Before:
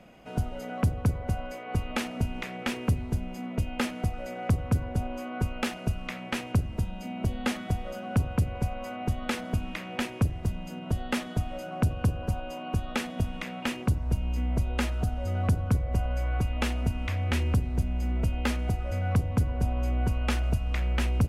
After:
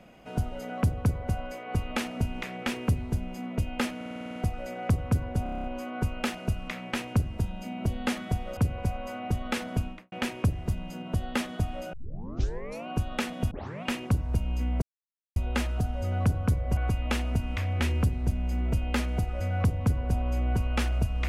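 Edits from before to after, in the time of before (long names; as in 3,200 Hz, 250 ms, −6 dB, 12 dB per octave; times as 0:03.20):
0:03.96: stutter 0.05 s, 9 plays
0:05.03: stutter 0.03 s, 8 plays
0:07.96–0:08.34: remove
0:09.56–0:09.89: fade out and dull
0:11.70: tape start 0.94 s
0:13.28: tape start 0.32 s
0:14.59: splice in silence 0.54 s
0:16.00–0:16.28: remove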